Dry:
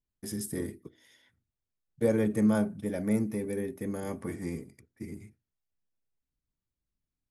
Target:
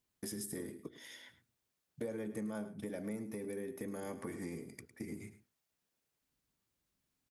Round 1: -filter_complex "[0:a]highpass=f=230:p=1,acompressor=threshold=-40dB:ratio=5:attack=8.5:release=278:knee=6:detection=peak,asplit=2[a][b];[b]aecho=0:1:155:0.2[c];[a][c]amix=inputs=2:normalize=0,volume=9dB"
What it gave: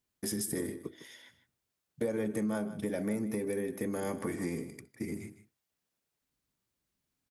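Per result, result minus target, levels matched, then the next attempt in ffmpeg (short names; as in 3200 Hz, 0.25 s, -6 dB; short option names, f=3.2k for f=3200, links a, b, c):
echo 49 ms late; compressor: peak gain reduction -8 dB
-filter_complex "[0:a]highpass=f=230:p=1,acompressor=threshold=-40dB:ratio=5:attack=8.5:release=278:knee=6:detection=peak,asplit=2[a][b];[b]aecho=0:1:106:0.2[c];[a][c]amix=inputs=2:normalize=0,volume=9dB"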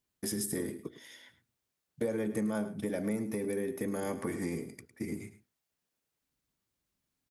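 compressor: peak gain reduction -8 dB
-filter_complex "[0:a]highpass=f=230:p=1,acompressor=threshold=-50dB:ratio=5:attack=8.5:release=278:knee=6:detection=peak,asplit=2[a][b];[b]aecho=0:1:106:0.2[c];[a][c]amix=inputs=2:normalize=0,volume=9dB"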